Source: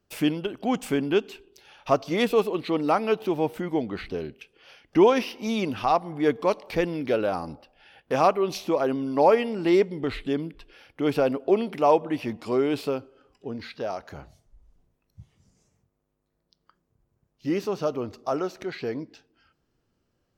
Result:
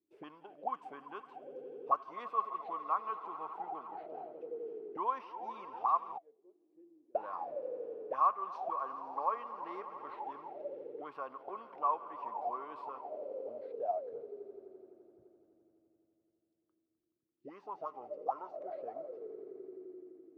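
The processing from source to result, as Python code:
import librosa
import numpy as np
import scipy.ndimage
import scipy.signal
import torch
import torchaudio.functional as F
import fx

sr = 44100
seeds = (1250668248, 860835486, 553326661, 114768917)

y = fx.echo_swell(x, sr, ms=85, loudest=5, wet_db=-17.0)
y = fx.gate_flip(y, sr, shuts_db=-24.0, range_db=-32, at=(6.17, 7.15))
y = fx.auto_wah(y, sr, base_hz=320.0, top_hz=1100.0, q=17.0, full_db=-21.5, direction='up')
y = y * 10.0 ** (4.0 / 20.0)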